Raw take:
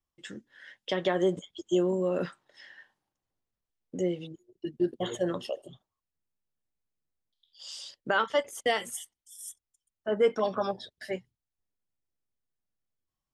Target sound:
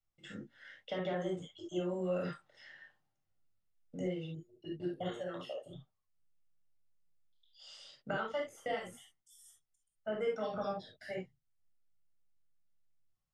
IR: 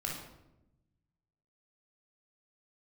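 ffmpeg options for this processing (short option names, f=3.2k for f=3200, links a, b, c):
-filter_complex "[0:a]acrossover=split=560|1400|2800[a][b][c][d];[a]acompressor=threshold=-35dB:ratio=4[e];[b]acompressor=threshold=-37dB:ratio=4[f];[c]acompressor=threshold=-47dB:ratio=4[g];[d]acompressor=threshold=-53dB:ratio=4[h];[e][f][g][h]amix=inputs=4:normalize=0,asettb=1/sr,asplit=3[i][j][k];[i]atrim=end=5.114[l];[j]atrim=start=5.11:end=5.66,asetpts=PTS-STARTPTS,afade=t=in:d=0.004:c=qsin,afade=t=out:st=0.546:d=0.004:c=qsin,lowshelf=f=350:g=-11[m];[k]atrim=start=5.656[n];[l][m]acrossfade=d=0.004:c1=hsin:c2=qsin[o];[o][n]acrossfade=d=0.004:c1=qsin:c2=hsin,crystalizer=i=1.5:c=0,aemphasis=mode=reproduction:type=50fm[p];[1:a]atrim=start_sample=2205,atrim=end_sample=3528[q];[p][q]afir=irnorm=-1:irlink=0,volume=-4.5dB"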